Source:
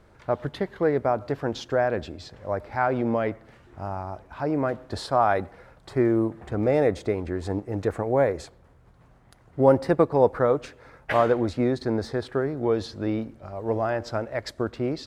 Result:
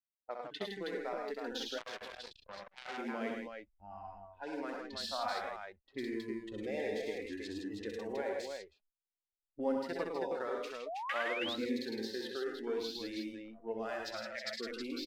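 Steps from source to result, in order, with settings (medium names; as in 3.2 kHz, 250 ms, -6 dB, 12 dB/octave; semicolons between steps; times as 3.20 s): frequency weighting D; hysteresis with a dead band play -34 dBFS; gate -47 dBFS, range -28 dB; spectral noise reduction 20 dB; peaking EQ 140 Hz -10 dB 0.63 oct; compression 2:1, threshold -33 dBFS, peak gain reduction 11.5 dB; multi-tap echo 64/105/109/162/320 ms -6/-7.5/-7/-6/-5.5 dB; flange 0.53 Hz, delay 3.1 ms, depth 2.5 ms, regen +56%; 10.86–11.56 s: painted sound rise 590–4000 Hz -35 dBFS; level-controlled noise filter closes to 330 Hz, open at -32 dBFS; 1.78–2.98 s: transformer saturation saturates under 3.5 kHz; trim -5.5 dB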